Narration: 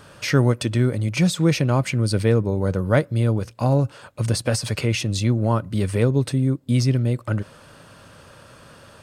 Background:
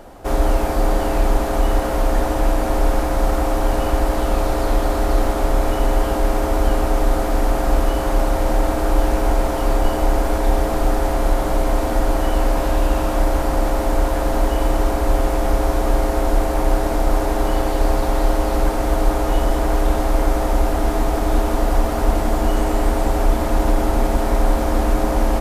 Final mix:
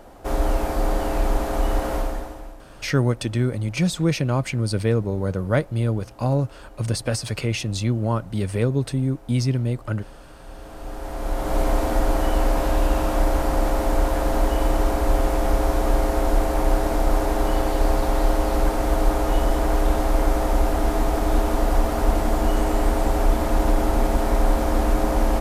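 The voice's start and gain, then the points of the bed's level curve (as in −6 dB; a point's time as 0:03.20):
2.60 s, −2.5 dB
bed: 0:01.96 −4.5 dB
0:02.67 −28 dB
0:10.31 −28 dB
0:11.60 −2.5 dB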